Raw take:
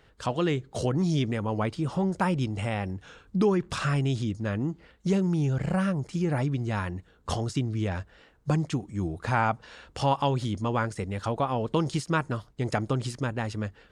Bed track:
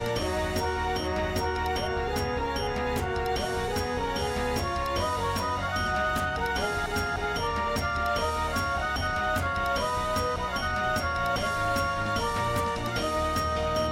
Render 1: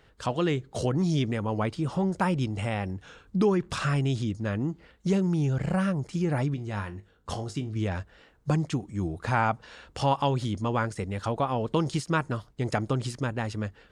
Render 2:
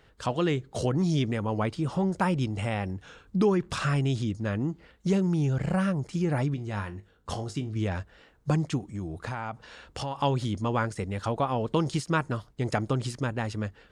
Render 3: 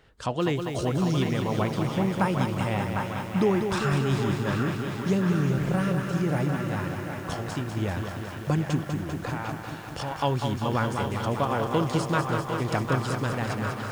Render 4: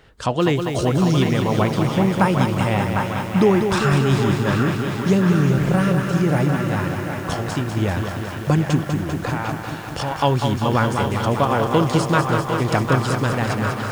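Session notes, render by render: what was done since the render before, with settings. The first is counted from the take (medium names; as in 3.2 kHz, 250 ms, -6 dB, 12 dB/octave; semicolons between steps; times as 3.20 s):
6.54–7.76 s: feedback comb 51 Hz, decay 0.22 s, mix 70%
8.78–10.16 s: compression 5:1, threshold -30 dBFS
band-passed feedback delay 752 ms, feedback 70%, band-pass 1.5 kHz, level -4 dB; bit-crushed delay 197 ms, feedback 80%, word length 8-bit, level -6.5 dB
trim +7.5 dB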